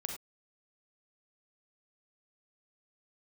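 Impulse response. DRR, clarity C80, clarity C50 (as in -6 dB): 2.0 dB, 8.5 dB, 4.0 dB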